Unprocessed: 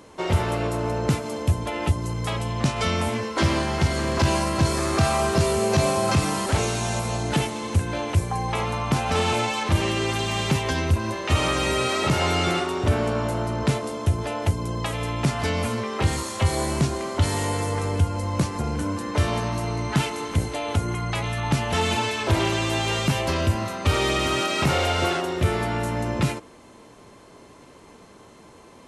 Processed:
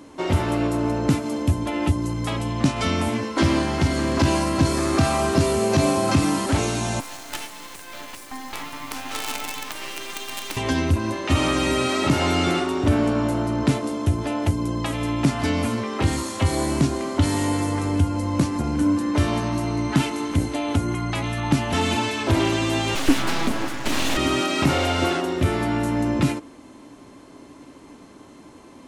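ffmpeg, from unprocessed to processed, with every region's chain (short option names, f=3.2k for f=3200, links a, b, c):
-filter_complex "[0:a]asettb=1/sr,asplit=3[a][b][c];[a]atrim=end=7.004[d];[b]atrim=start=7:end=10.57,asetpts=PTS-STARTPTS,afade=t=in:d=0.004:c=qsin,afade=t=out:st=3.566:d=0.004:c=qsin,highpass=900,acrusher=bits=4:dc=4:mix=0:aa=0.000001[e];[c]atrim=start=10.566[f];[d][e]acrossfade=d=0.004:c1=hsin:c2=qsin[g];[g][f]acrossfade=d=0.004:c1=qsin:c2=hsin,asettb=1/sr,asplit=3[h][i][j];[h]atrim=end=22.954[k];[i]atrim=start=22.95:end=24.17,asetpts=PTS-STARTPTS,afade=t=in:d=0.004:c=qsin,afade=t=out:st=1.216:d=0.004:c=qsin,aecho=1:1:6.1:0.81,atrim=end_sample=53802,aeval=exprs='abs(val(0))':c=same[l];[j]atrim=start=24.166[m];[k][l]acrossfade=d=0.004:c1=hsin:c2=qsin[n];[n][m]acrossfade=d=0.004:c1=qsin:c2=hsin,equalizer=f=280:w=4.1:g=12.5,bandreject=f=460:w=15"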